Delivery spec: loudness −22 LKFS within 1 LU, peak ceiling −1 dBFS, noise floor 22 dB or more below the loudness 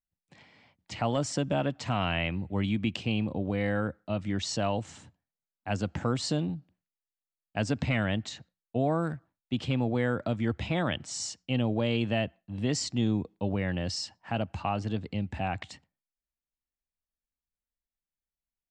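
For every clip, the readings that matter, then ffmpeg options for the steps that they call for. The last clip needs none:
integrated loudness −31.0 LKFS; sample peak −16.5 dBFS; target loudness −22.0 LKFS
→ -af "volume=9dB"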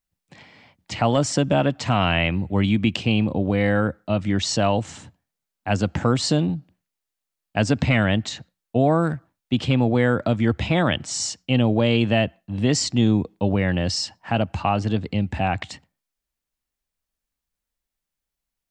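integrated loudness −22.0 LKFS; sample peak −7.5 dBFS; background noise floor −85 dBFS

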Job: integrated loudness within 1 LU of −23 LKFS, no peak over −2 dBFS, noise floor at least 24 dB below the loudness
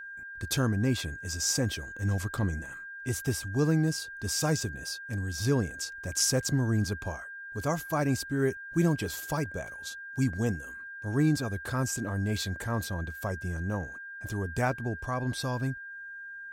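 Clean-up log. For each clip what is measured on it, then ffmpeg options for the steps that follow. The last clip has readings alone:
interfering tone 1,600 Hz; level of the tone −40 dBFS; integrated loudness −31.0 LKFS; sample peak −14.5 dBFS; target loudness −23.0 LKFS
→ -af "bandreject=frequency=1600:width=30"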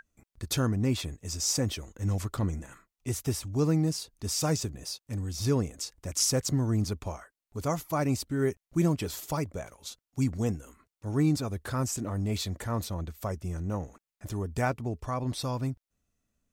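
interfering tone none found; integrated loudness −31.0 LKFS; sample peak −14.5 dBFS; target loudness −23.0 LKFS
→ -af "volume=8dB"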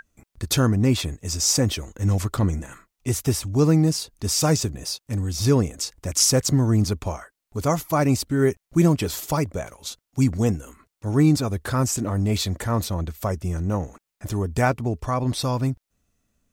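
integrated loudness −23.0 LKFS; sample peak −6.5 dBFS; background noise floor −83 dBFS

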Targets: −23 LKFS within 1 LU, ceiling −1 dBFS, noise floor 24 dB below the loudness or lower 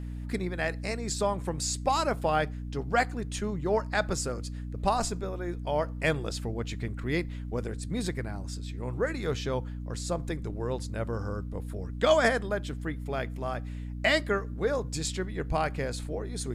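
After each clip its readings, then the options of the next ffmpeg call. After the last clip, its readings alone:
mains hum 60 Hz; hum harmonics up to 300 Hz; level of the hum −34 dBFS; integrated loudness −31.0 LKFS; sample peak −10.0 dBFS; target loudness −23.0 LKFS
→ -af "bandreject=frequency=60:width_type=h:width=4,bandreject=frequency=120:width_type=h:width=4,bandreject=frequency=180:width_type=h:width=4,bandreject=frequency=240:width_type=h:width=4,bandreject=frequency=300:width_type=h:width=4"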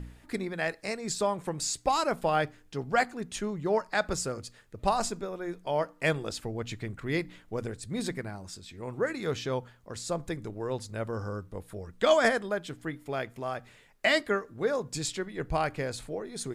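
mains hum none found; integrated loudness −31.5 LKFS; sample peak −10.5 dBFS; target loudness −23.0 LKFS
→ -af "volume=8.5dB"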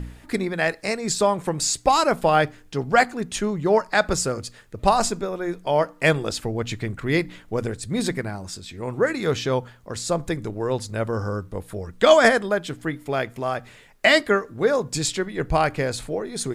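integrated loudness −23.0 LKFS; sample peak −2.0 dBFS; background noise floor −49 dBFS

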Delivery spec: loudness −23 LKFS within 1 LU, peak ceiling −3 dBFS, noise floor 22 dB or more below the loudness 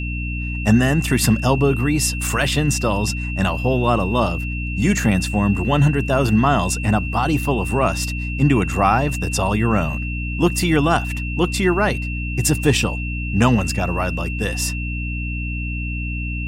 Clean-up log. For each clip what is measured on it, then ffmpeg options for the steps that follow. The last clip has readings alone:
mains hum 60 Hz; hum harmonics up to 300 Hz; level of the hum −23 dBFS; interfering tone 2,700 Hz; level of the tone −29 dBFS; integrated loudness −19.5 LKFS; sample peak −1.5 dBFS; target loudness −23.0 LKFS
→ -af "bandreject=frequency=60:width_type=h:width=6,bandreject=frequency=120:width_type=h:width=6,bandreject=frequency=180:width_type=h:width=6,bandreject=frequency=240:width_type=h:width=6,bandreject=frequency=300:width_type=h:width=6"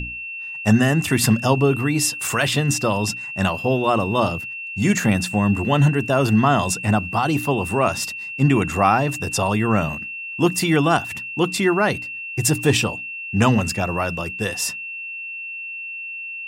mains hum none found; interfering tone 2,700 Hz; level of the tone −29 dBFS
→ -af "bandreject=frequency=2700:width=30"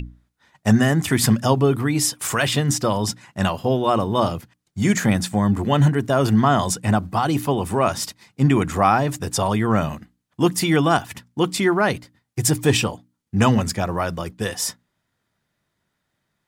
interfering tone none found; integrated loudness −20.5 LKFS; sample peak −2.5 dBFS; target loudness −23.0 LKFS
→ -af "volume=-2.5dB"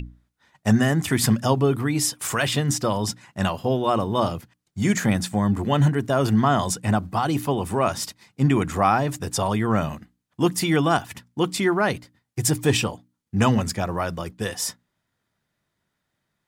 integrated loudness −23.0 LKFS; sample peak −5.0 dBFS; background noise floor −78 dBFS

